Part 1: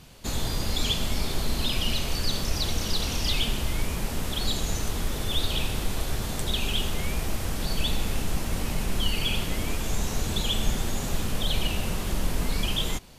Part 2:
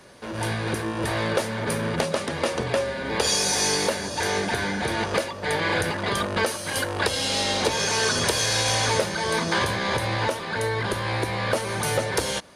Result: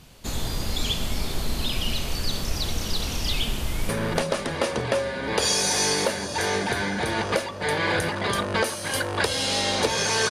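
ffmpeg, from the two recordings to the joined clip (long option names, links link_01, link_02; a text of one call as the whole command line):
ffmpeg -i cue0.wav -i cue1.wav -filter_complex "[0:a]apad=whole_dur=10.3,atrim=end=10.3,atrim=end=3.892[link_01];[1:a]atrim=start=1.708:end=8.12[link_02];[link_01][link_02]acrossfade=duration=0.004:curve1=hsin:curve2=hsin,asplit=2[link_03][link_04];[link_04]afade=type=in:start_time=3.49:duration=0.01,afade=type=out:start_time=3.89:duration=0.01,aecho=0:1:330|660|990:0.281838|0.0704596|0.0176149[link_05];[link_03][link_05]amix=inputs=2:normalize=0" out.wav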